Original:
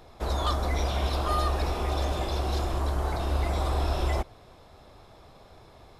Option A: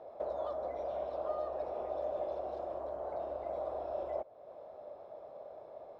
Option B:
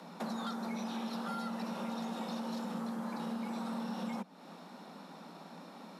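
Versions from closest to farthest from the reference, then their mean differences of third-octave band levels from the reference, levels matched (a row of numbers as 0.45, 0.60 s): B, A; 9.0, 13.5 dB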